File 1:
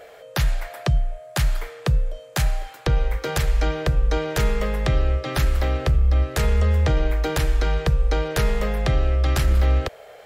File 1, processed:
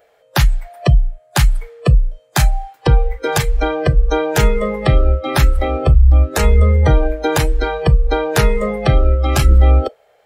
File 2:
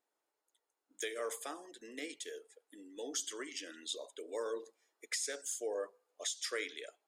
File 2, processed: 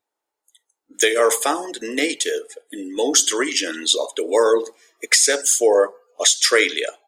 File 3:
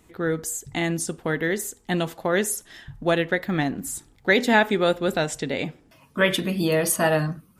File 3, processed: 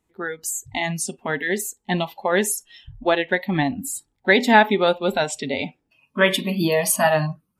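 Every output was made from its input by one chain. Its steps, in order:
spectral noise reduction 20 dB; peaking EQ 860 Hz +4.5 dB 0.25 oct; peak normalisation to -1.5 dBFS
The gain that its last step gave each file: +9.0 dB, +23.0 dB, +3.0 dB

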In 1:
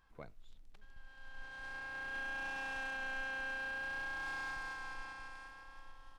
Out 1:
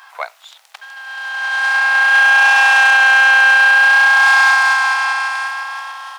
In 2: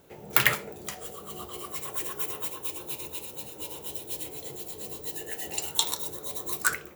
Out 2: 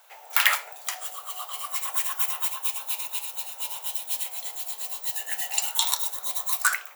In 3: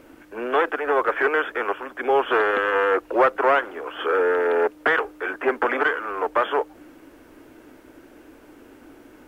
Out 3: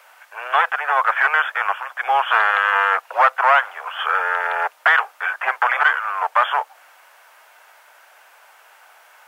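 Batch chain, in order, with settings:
steep high-pass 710 Hz 36 dB/octave; loudness maximiser +8.5 dB; peak normalisation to -3 dBFS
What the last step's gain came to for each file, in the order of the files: +23.0 dB, -2.0 dB, -2.0 dB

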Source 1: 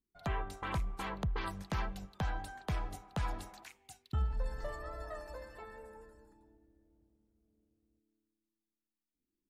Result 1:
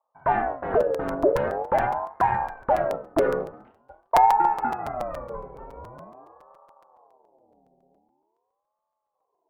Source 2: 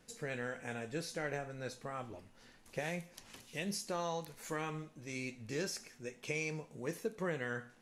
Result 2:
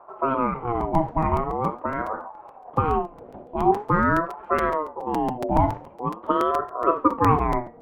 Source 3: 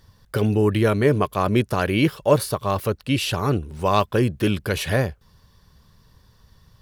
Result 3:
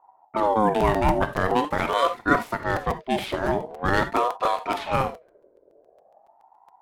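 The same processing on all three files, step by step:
median filter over 9 samples; level-controlled noise filter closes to 330 Hz, open at -19 dBFS; gated-style reverb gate 100 ms flat, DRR 8 dB; crackling interface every 0.14 s, samples 256, repeat, from 0.80 s; ring modulator with a swept carrier 670 Hz, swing 30%, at 0.45 Hz; normalise loudness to -24 LUFS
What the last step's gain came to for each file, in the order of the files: +17.0 dB, +23.0 dB, -0.5 dB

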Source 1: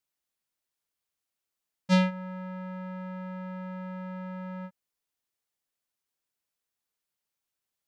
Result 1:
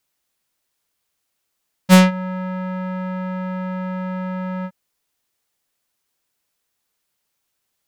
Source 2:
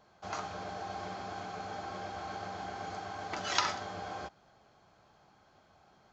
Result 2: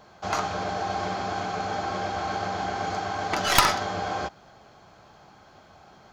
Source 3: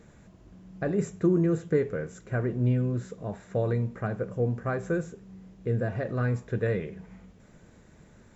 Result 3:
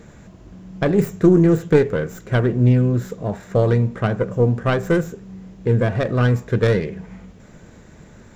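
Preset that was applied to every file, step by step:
tracing distortion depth 0.14 ms; peak normalisation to -2 dBFS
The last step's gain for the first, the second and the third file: +12.0 dB, +11.5 dB, +10.0 dB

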